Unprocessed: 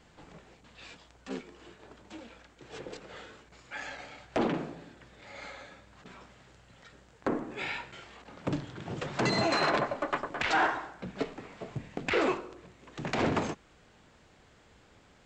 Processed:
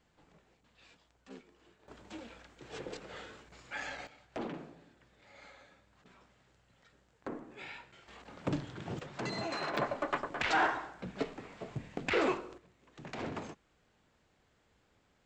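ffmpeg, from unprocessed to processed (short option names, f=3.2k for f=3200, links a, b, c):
-af "asetnsamples=n=441:p=0,asendcmd='1.88 volume volume -0.5dB;4.07 volume volume -11dB;8.08 volume volume -2dB;8.99 volume volume -10dB;9.77 volume volume -2.5dB;12.58 volume volume -11.5dB',volume=-12.5dB"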